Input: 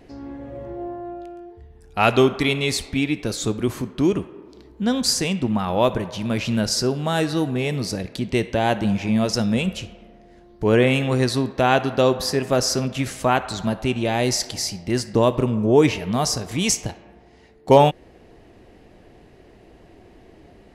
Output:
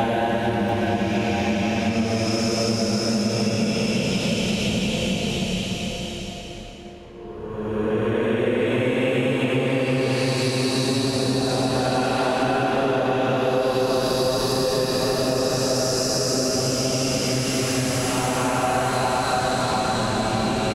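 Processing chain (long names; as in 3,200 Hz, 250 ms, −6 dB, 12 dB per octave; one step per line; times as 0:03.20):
peak hold with a rise ahead of every peak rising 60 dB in 0.38 s
transient designer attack −7 dB, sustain +10 dB
extreme stretch with random phases 4×, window 0.50 s, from 0:08.63
on a send: bouncing-ball delay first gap 690 ms, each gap 0.65×, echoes 5
on the sum: downward compressor, threshold −19 dBFS, peak gain reduction 9.5 dB
parametric band 490 Hz +2.5 dB 2.6 octaves
level −1 dB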